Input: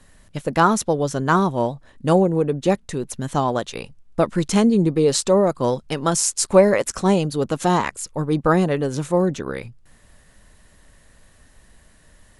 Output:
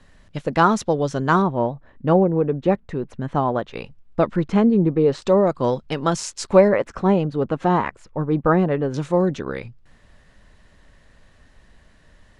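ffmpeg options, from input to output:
-af "asetnsamples=n=441:p=0,asendcmd='1.42 lowpass f 2000;3.74 lowpass f 3700;4.36 lowpass f 1900;5.22 lowpass f 4200;6.68 lowpass f 2000;8.94 lowpass f 4700',lowpass=5000"

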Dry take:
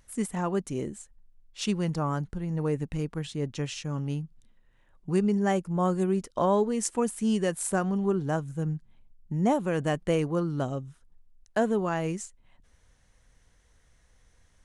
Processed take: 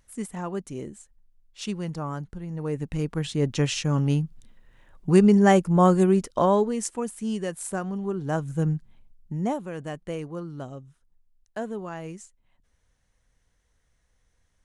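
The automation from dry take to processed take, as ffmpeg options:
-af "volume=7.5,afade=t=in:st=2.61:d=1.03:silence=0.266073,afade=t=out:st=5.79:d=1.19:silence=0.266073,afade=t=in:st=8.16:d=0.44:silence=0.354813,afade=t=out:st=8.6:d=1.08:silence=0.223872"

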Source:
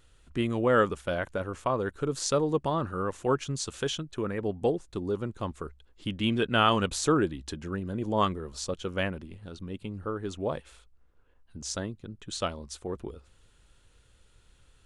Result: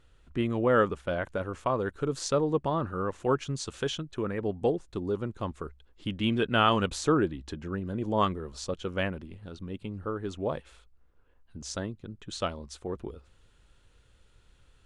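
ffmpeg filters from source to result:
-af "asetnsamples=n=441:p=0,asendcmd='1.25 lowpass f 5600;2.28 lowpass f 2900;3.2 lowpass f 5000;7.03 lowpass f 2800;7.83 lowpass f 4900',lowpass=f=2800:p=1"

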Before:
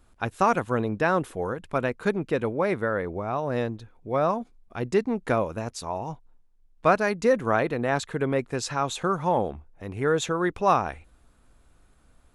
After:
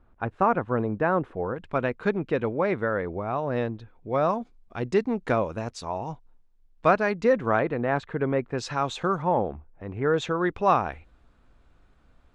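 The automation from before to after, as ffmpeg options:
-af "asetnsamples=n=441:p=0,asendcmd='1.56 lowpass f 3600;4.13 lowpass f 5900;6.91 lowpass f 3700;7.59 lowpass f 2200;8.58 lowpass f 4900;9.22 lowpass f 2000;10.14 lowpass f 4000',lowpass=1600"

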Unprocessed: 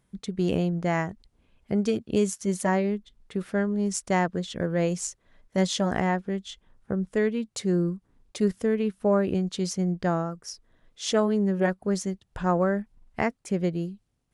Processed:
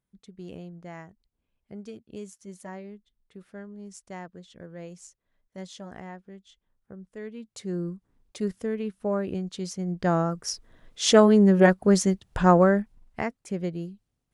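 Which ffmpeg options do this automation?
-af "volume=2.24,afade=t=in:st=7.16:d=0.79:silence=0.281838,afade=t=in:st=9.85:d=0.62:silence=0.251189,afade=t=out:st=12.45:d=0.78:silence=0.281838"

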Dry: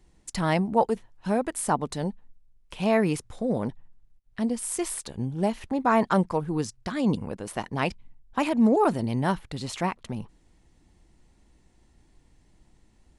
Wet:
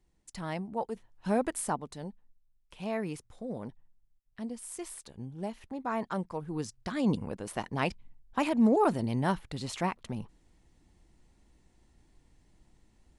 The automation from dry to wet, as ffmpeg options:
-af "volume=2.11,afade=t=in:st=0.89:d=0.57:silence=0.298538,afade=t=out:st=1.46:d=0.36:silence=0.316228,afade=t=in:st=6.29:d=0.69:silence=0.398107"

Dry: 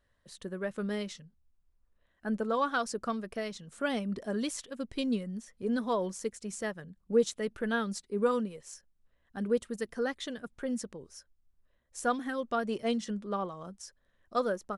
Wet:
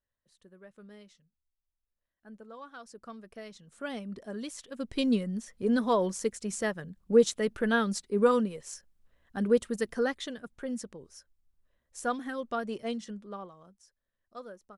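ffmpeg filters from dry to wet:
-af "volume=1.68,afade=t=in:st=2.74:d=1.15:silence=0.266073,afade=t=in:st=4.55:d=0.5:silence=0.316228,afade=t=out:st=9.93:d=0.45:silence=0.501187,afade=t=out:st=12.53:d=1.25:silence=0.223872"

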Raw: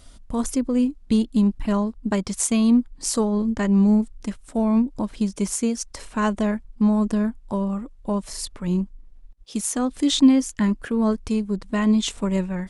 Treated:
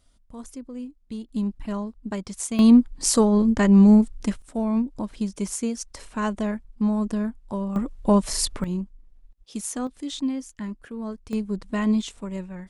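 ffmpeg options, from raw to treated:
-af "asetnsamples=n=441:p=0,asendcmd='1.29 volume volume -7.5dB;2.59 volume volume 3.5dB;4.42 volume volume -4dB;7.76 volume volume 6.5dB;8.64 volume volume -5.5dB;9.87 volume volume -12dB;11.33 volume volume -3dB;12.02 volume volume -9.5dB',volume=0.178"

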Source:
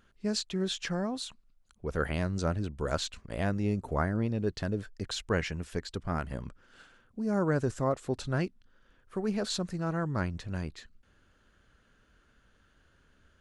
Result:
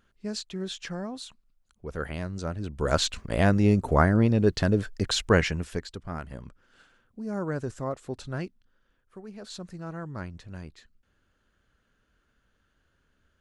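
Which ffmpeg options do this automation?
-af "volume=6.68,afade=t=in:st=2.57:d=0.51:silence=0.266073,afade=t=out:st=5.3:d=0.67:silence=0.251189,afade=t=out:st=8.45:d=0.87:silence=0.316228,afade=t=in:st=9.32:d=0.37:silence=0.421697"

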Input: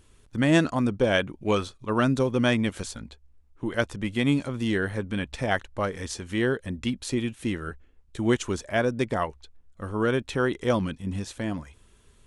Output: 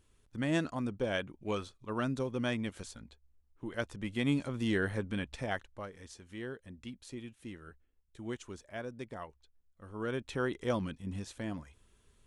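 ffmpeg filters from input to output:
-af "volume=1.58,afade=t=in:st=3.73:d=1.16:silence=0.473151,afade=t=out:st=4.89:d=0.99:silence=0.237137,afade=t=in:st=9.83:d=0.51:silence=0.375837"

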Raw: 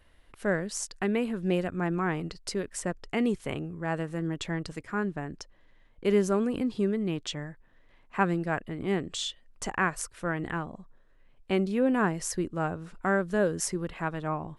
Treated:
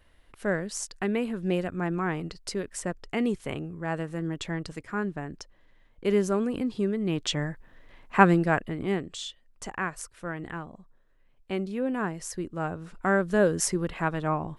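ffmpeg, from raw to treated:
-af "volume=6.31,afade=t=in:st=6.99:d=0.45:silence=0.398107,afade=t=out:st=8.22:d=0.91:silence=0.251189,afade=t=in:st=12.33:d=1.15:silence=0.398107"

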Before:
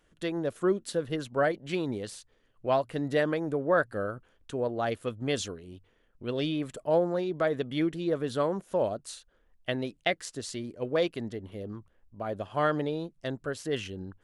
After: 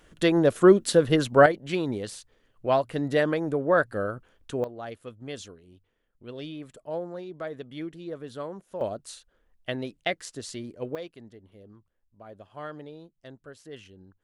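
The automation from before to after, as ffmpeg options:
-af "asetnsamples=n=441:p=0,asendcmd='1.46 volume volume 3dB;4.64 volume volume -8dB;8.81 volume volume -0.5dB;10.95 volume volume -12dB',volume=3.35"

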